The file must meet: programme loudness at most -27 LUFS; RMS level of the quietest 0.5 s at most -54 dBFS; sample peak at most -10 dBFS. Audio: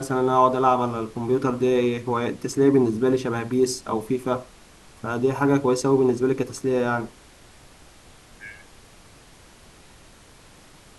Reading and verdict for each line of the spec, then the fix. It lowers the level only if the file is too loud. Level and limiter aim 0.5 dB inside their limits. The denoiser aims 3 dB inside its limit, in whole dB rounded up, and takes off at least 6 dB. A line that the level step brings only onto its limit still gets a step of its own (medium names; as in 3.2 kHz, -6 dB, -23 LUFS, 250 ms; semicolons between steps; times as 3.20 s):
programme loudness -22.5 LUFS: fail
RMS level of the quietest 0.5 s -50 dBFS: fail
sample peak -4.5 dBFS: fail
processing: trim -5 dB; peak limiter -10.5 dBFS